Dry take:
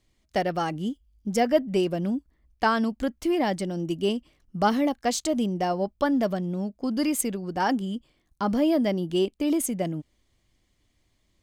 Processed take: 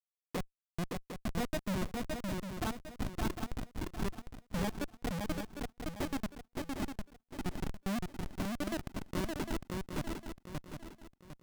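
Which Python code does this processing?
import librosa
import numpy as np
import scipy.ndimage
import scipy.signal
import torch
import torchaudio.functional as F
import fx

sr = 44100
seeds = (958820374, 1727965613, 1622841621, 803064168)

p1 = fx.gate_flip(x, sr, shuts_db=-23.0, range_db=-33)
p2 = fx.spec_topn(p1, sr, count=8)
p3 = fx.schmitt(p2, sr, flips_db=-52.0)
p4 = p3 + fx.echo_swing(p3, sr, ms=754, ratio=3, feedback_pct=33, wet_db=-3, dry=0)
y = F.gain(torch.from_numpy(p4), 14.5).numpy()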